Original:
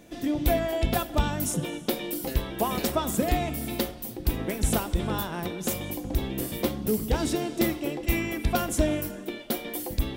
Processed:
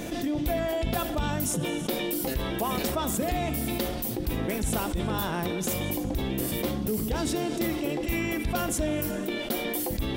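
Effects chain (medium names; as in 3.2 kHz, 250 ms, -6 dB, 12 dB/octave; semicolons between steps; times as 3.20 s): level flattener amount 70%; trim -7 dB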